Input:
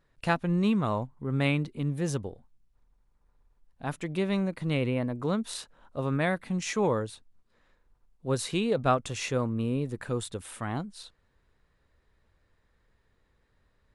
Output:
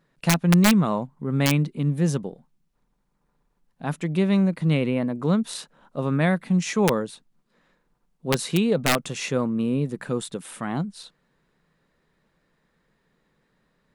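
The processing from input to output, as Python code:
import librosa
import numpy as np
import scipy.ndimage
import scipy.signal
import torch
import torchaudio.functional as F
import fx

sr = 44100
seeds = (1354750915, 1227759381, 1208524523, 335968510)

y = fx.low_shelf_res(x, sr, hz=120.0, db=-10.0, q=3.0)
y = (np.mod(10.0 ** (14.5 / 20.0) * y + 1.0, 2.0) - 1.0) / 10.0 ** (14.5 / 20.0)
y = y * 10.0 ** (3.5 / 20.0)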